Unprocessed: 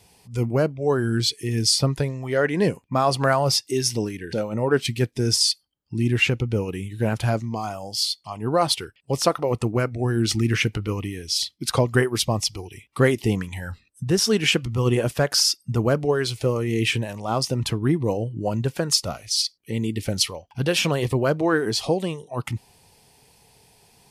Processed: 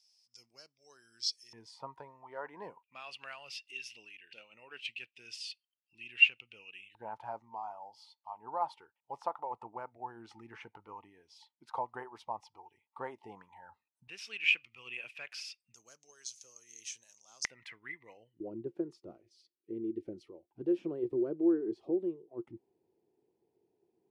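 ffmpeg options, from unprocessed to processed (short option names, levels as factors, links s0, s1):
-af "asetnsamples=n=441:p=0,asendcmd='1.53 bandpass f 940;2.83 bandpass f 2700;6.95 bandpass f 890;14.08 bandpass f 2500;15.74 bandpass f 6300;17.45 bandpass f 2000;18.4 bandpass f 350',bandpass=f=5300:t=q:w=11:csg=0"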